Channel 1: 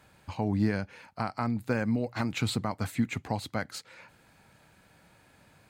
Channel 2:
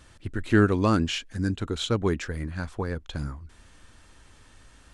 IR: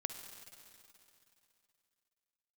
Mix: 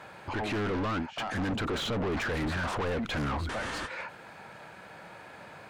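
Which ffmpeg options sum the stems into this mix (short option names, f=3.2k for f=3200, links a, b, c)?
-filter_complex "[0:a]equalizer=f=270:t=o:w=0.32:g=-5.5,volume=-9.5dB,asplit=2[a][b];[1:a]dynaudnorm=f=310:g=9:m=13dB,volume=0.5dB[c];[b]apad=whole_len=217669[d];[c][d]sidechaingate=range=-43dB:threshold=-56dB:ratio=16:detection=peak[e];[a][e]amix=inputs=2:normalize=0,asplit=2[f][g];[g]highpass=f=720:p=1,volume=36dB,asoftclip=type=tanh:threshold=-6dB[h];[f][h]amix=inputs=2:normalize=0,lowpass=f=1k:p=1,volume=-6dB,asoftclip=type=tanh:threshold=-18dB,alimiter=level_in=4.5dB:limit=-24dB:level=0:latency=1:release=83,volume=-4.5dB"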